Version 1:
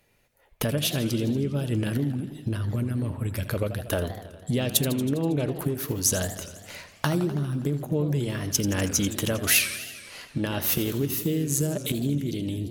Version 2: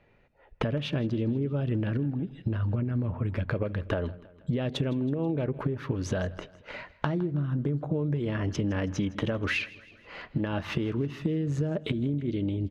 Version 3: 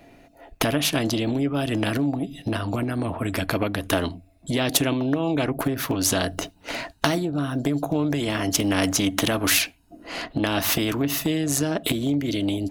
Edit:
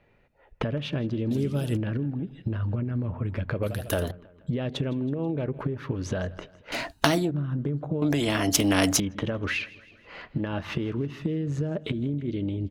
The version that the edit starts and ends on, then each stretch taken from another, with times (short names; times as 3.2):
2
1.31–1.77 from 1
3.63–4.11 from 1
6.72–7.31 from 3
8.02–9 from 3